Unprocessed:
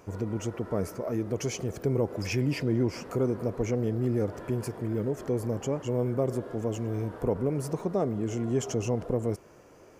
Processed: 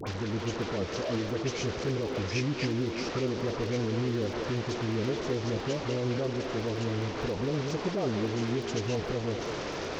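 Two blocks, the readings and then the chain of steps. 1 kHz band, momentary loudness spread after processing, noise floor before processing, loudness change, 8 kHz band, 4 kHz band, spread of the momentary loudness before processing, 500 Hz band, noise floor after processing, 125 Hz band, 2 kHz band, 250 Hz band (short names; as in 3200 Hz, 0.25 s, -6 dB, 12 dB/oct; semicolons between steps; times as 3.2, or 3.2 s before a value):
+3.0 dB, 2 LU, -54 dBFS, -1.0 dB, -1.5 dB, +8.0 dB, 5 LU, -1.5 dB, -36 dBFS, -2.0 dB, +6.0 dB, -1.5 dB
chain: delta modulation 32 kbps, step -29.5 dBFS; limiter -22 dBFS, peak gain reduction 7.5 dB; dispersion highs, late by 70 ms, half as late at 1100 Hz; crackle 17/s -40 dBFS; delay with a stepping band-pass 0.199 s, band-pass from 380 Hz, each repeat 1.4 oct, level -4.5 dB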